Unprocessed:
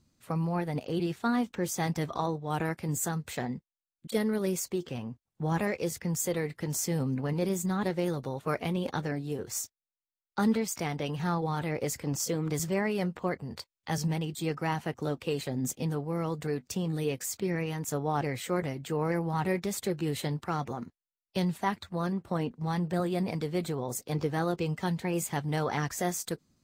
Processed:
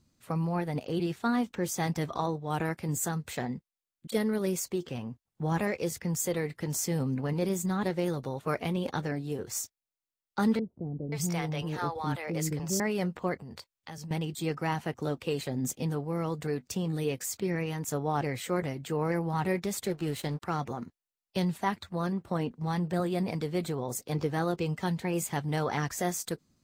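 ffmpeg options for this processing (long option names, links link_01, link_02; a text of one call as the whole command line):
ffmpeg -i in.wav -filter_complex "[0:a]asettb=1/sr,asplit=3[link_01][link_02][link_03];[link_01]atrim=end=10.594[link_04];[link_02]atrim=start=10.59:end=12.8,asetpts=PTS-STARTPTS,afade=type=in:duration=0.004:curve=qsin,afade=type=out:start_time=2.206:duration=0.004:curve=qsin,acrossover=split=460[link_05][link_06];[link_06]adelay=530[link_07];[link_05][link_07]amix=inputs=2:normalize=0,atrim=end_sample=97461[link_08];[link_03]atrim=start=12.796[link_09];[link_04][link_08]acrossfade=duration=0.004:curve1=hsin:curve2=qsin[link_10];[link_10][link_09]acrossfade=duration=0.004:curve1=qsin:curve2=hsin,asettb=1/sr,asplit=3[link_11][link_12][link_13];[link_11]atrim=end=13.414[link_14];[link_12]atrim=start=13.41:end=14.11,asetpts=PTS-STARTPTS,afade=type=in:duration=0.004:curve=qsin,afade=type=out:start_time=0.696:duration=0.004:curve=qsin,acompressor=threshold=-40dB:ratio=5:attack=3.2:release=140:knee=1:detection=peak[link_15];[link_13]atrim=start=14.106[link_16];[link_14][link_15]acrossfade=duration=0.004:curve1=hsin:curve2=qsin[link_17];[link_17][link_16]acrossfade=duration=0.004:curve1=qsin:curve2=hsin,asettb=1/sr,asplit=3[link_18][link_19][link_20];[link_18]atrim=end=19.864[link_21];[link_19]atrim=start=19.86:end=20.42,asetpts=PTS-STARTPTS,afade=type=in:duration=0.004:curve=qsin,afade=type=out:start_time=0.556:duration=0.004:curve=qsin,aeval=exprs='sgn(val(0))*max(abs(val(0))-0.00501,0)':channel_layout=same[link_22];[link_20]atrim=start=20.416[link_23];[link_21][link_22]acrossfade=duration=0.004:curve1=hsin:curve2=qsin[link_24];[link_24][link_23]acrossfade=duration=0.004:curve1=qsin:curve2=hsin" out.wav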